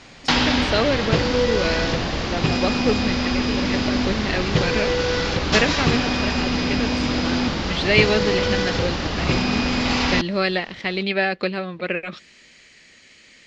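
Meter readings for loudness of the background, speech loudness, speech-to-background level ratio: −21.5 LKFS, −25.0 LKFS, −3.5 dB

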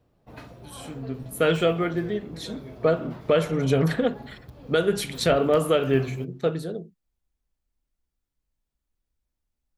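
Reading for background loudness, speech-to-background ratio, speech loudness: −42.5 LKFS, 18.0 dB, −24.5 LKFS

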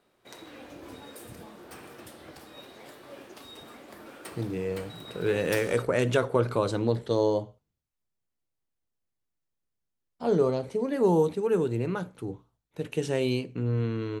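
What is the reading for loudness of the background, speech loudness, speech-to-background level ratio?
−45.0 LKFS, −27.5 LKFS, 17.5 dB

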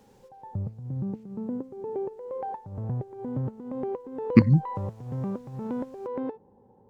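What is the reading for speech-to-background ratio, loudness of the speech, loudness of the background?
13.0 dB, −21.5 LKFS, −34.5 LKFS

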